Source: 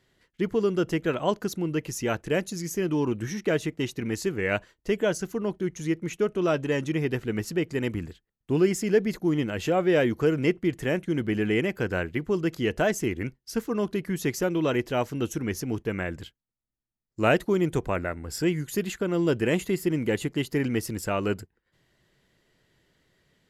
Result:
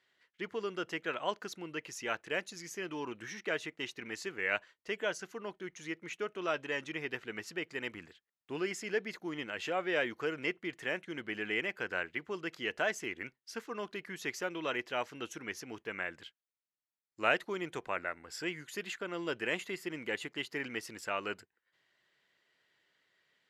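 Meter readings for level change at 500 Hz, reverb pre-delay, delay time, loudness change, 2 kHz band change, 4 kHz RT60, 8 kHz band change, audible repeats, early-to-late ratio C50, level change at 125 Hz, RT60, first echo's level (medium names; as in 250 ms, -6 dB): -12.0 dB, no reverb, no echo, -10.0 dB, -3.0 dB, no reverb, -10.0 dB, no echo, no reverb, -22.0 dB, no reverb, no echo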